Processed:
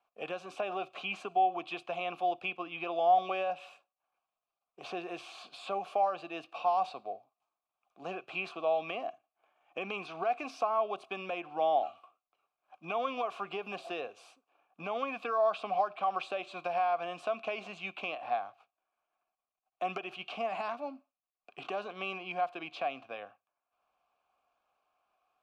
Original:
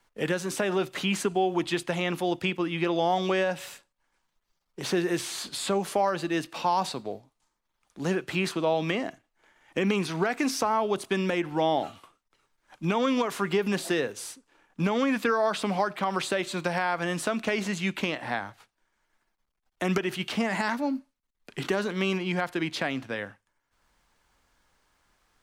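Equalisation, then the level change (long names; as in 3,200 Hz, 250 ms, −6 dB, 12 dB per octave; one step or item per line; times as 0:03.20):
dynamic equaliser 3,500 Hz, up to +4 dB, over −45 dBFS, Q 1.1
formant filter a
low-shelf EQ 91 Hz +6.5 dB
+3.5 dB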